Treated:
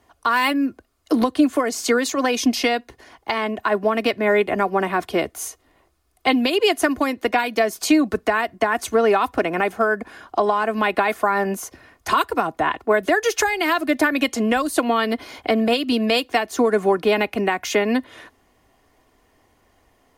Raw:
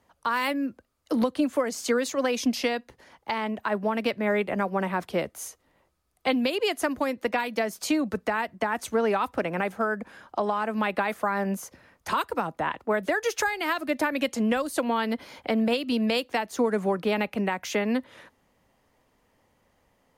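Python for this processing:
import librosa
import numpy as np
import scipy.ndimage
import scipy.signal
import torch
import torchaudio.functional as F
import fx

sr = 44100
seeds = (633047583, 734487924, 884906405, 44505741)

y = x + 0.49 * np.pad(x, (int(2.8 * sr / 1000.0), 0))[:len(x)]
y = F.gain(torch.from_numpy(y), 6.5).numpy()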